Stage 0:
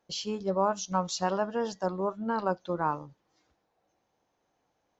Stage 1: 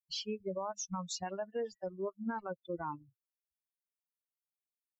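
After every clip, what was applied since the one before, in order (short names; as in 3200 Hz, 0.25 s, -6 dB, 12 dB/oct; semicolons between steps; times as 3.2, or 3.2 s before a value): per-bin expansion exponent 3; high shelf 6000 Hz +7 dB; limiter -28.5 dBFS, peak gain reduction 10.5 dB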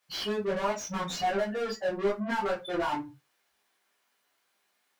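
overdrive pedal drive 32 dB, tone 2000 Hz, clips at -28 dBFS; reverb RT60 0.20 s, pre-delay 7 ms, DRR -4.5 dB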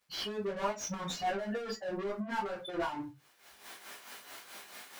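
recorder AGC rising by 39 dB/s; crackle 430/s -60 dBFS; tremolo 4.6 Hz, depth 59%; gain -3 dB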